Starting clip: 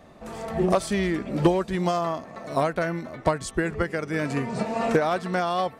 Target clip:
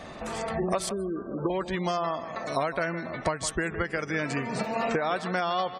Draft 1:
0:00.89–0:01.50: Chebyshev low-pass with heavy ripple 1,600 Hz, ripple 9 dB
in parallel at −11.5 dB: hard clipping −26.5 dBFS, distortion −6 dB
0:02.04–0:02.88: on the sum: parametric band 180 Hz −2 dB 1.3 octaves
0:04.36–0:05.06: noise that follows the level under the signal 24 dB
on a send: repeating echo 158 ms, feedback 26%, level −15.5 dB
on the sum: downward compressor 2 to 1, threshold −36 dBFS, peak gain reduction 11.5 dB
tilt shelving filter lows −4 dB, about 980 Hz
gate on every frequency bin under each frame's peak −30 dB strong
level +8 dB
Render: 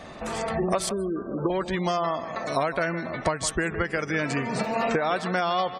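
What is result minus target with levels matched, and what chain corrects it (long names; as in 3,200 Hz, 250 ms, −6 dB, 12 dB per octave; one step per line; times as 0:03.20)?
hard clipping: distortion +10 dB; downward compressor: peak gain reduction −3.5 dB
0:00.89–0:01.50: Chebyshev low-pass with heavy ripple 1,600 Hz, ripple 9 dB
in parallel at −11.5 dB: hard clipping −17 dBFS, distortion −16 dB
0:02.04–0:02.88: on the sum: parametric band 180 Hz −2 dB 1.3 octaves
0:04.36–0:05.06: noise that follows the level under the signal 24 dB
on a send: repeating echo 158 ms, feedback 26%, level −15.5 dB
on the sum: downward compressor 2 to 1, threshold −42 dBFS, peak gain reduction 15 dB
tilt shelving filter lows −4 dB, about 980 Hz
gate on every frequency bin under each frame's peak −30 dB strong
level +8 dB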